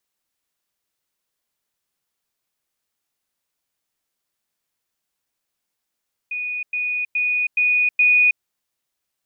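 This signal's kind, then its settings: level ladder 2470 Hz -23.5 dBFS, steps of 3 dB, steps 5, 0.32 s 0.10 s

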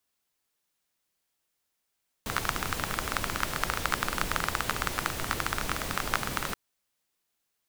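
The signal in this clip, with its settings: rain from filtered ticks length 4.28 s, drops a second 18, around 1300 Hz, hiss 0 dB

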